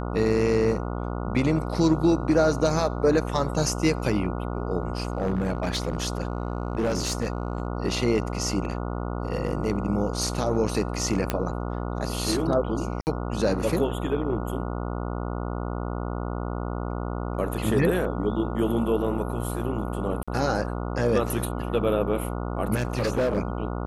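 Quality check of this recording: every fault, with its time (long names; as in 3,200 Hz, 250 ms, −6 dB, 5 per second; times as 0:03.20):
mains buzz 60 Hz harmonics 24 −30 dBFS
0:04.98–0:07.67: clipping −20.5 dBFS
0:11.30: click −9 dBFS
0:13.01–0:13.07: drop-out 59 ms
0:20.23–0:20.28: drop-out 46 ms
0:22.74–0:23.39: clipping −19.5 dBFS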